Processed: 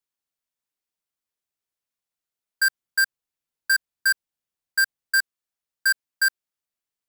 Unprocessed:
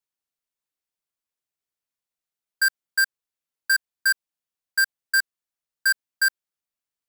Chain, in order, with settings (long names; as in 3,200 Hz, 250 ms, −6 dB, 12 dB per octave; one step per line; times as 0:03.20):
0:02.65–0:05.18: low-shelf EQ 240 Hz +5.5 dB